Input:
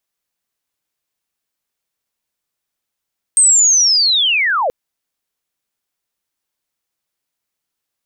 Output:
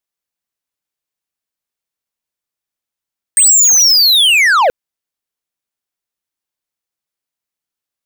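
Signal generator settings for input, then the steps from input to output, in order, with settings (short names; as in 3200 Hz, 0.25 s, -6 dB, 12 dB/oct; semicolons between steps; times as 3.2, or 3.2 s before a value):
chirp linear 8500 Hz -> 460 Hz -6.5 dBFS -> -13.5 dBFS 1.33 s
sample leveller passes 3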